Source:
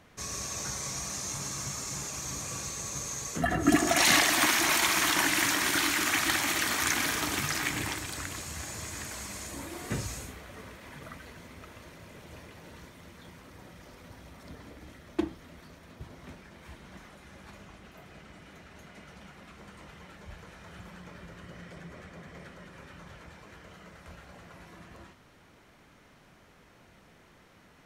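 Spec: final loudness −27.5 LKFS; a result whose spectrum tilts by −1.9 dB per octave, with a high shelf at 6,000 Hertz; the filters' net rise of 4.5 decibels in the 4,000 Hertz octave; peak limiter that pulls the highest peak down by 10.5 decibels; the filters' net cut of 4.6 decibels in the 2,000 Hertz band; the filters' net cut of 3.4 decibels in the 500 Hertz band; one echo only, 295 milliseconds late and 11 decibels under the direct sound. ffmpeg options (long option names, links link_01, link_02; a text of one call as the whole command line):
ffmpeg -i in.wav -af "equalizer=frequency=500:width_type=o:gain=-5,equalizer=frequency=2000:width_type=o:gain=-7.5,equalizer=frequency=4000:width_type=o:gain=6,highshelf=frequency=6000:gain=5,alimiter=limit=-17.5dB:level=0:latency=1,aecho=1:1:295:0.282,volume=1dB" out.wav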